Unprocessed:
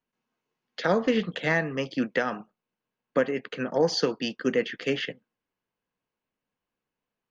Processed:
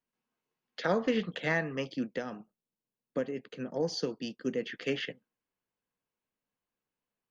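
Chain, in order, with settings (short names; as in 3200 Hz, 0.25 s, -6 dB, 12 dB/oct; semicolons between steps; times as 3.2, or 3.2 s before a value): 1.96–4.67 bell 1500 Hz -10 dB 2.6 oct; gain -5 dB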